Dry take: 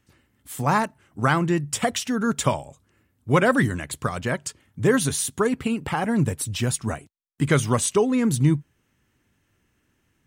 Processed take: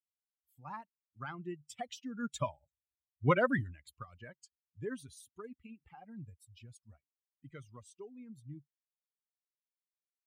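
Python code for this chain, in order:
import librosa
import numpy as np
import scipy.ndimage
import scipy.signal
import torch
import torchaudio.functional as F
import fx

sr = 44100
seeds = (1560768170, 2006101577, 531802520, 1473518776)

y = fx.bin_expand(x, sr, power=2.0)
y = fx.doppler_pass(y, sr, speed_mps=7, closest_m=1.7, pass_at_s=2.97)
y = fx.high_shelf(y, sr, hz=6100.0, db=-10.0)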